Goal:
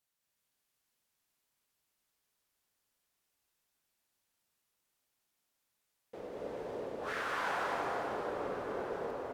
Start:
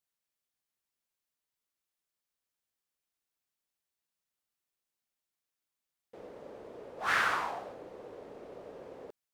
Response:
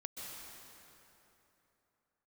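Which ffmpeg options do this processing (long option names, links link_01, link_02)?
-filter_complex "[0:a]areverse,acompressor=threshold=-39dB:ratio=12,areverse,asplit=2[link_01][link_02];[link_02]adelay=1341,volume=-9dB,highshelf=frequency=4000:gain=-30.2[link_03];[link_01][link_03]amix=inputs=2:normalize=0[link_04];[1:a]atrim=start_sample=2205,asetrate=33957,aresample=44100[link_05];[link_04][link_05]afir=irnorm=-1:irlink=0,volume=7.5dB"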